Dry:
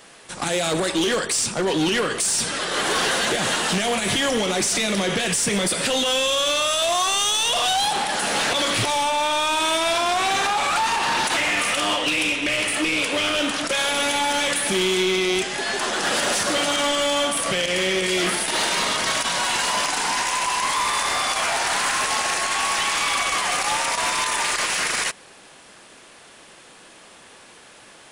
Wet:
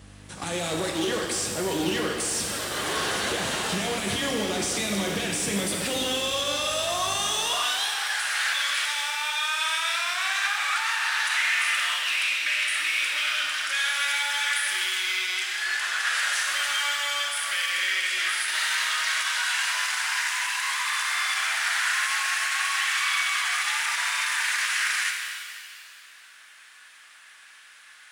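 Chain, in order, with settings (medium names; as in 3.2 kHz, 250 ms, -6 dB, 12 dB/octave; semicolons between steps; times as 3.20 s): mains buzz 50 Hz, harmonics 6, -42 dBFS -5 dB/octave; high-pass sweep 64 Hz -> 1.6 kHz, 7.02–7.66 s; pitch-shifted reverb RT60 2 s, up +7 st, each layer -8 dB, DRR 2 dB; trim -8 dB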